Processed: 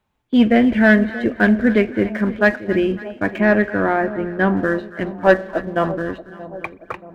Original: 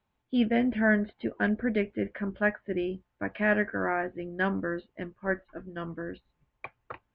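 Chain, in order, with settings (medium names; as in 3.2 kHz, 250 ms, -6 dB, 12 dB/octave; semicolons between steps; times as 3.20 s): 5.07–5.92 s: peaking EQ 730 Hz +11.5 dB 1.4 oct; spring tank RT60 1.2 s, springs 37 ms, chirp 80 ms, DRR 19.5 dB; waveshaping leveller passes 1; 3.38–4.57 s: treble shelf 2.4 kHz -11.5 dB; two-band feedback delay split 860 Hz, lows 630 ms, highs 277 ms, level -15 dB; trim +8.5 dB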